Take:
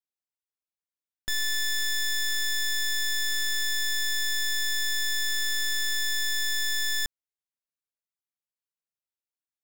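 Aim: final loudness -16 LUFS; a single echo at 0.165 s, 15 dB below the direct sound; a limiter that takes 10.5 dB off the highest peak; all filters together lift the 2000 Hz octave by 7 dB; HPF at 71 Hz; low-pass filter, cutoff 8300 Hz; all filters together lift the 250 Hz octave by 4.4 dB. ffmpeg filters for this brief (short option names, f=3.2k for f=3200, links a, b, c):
-af "highpass=71,lowpass=8.3k,equalizer=f=250:t=o:g=8,equalizer=f=2k:t=o:g=8,alimiter=level_in=3dB:limit=-24dB:level=0:latency=1,volume=-3dB,aecho=1:1:165:0.178,volume=17dB"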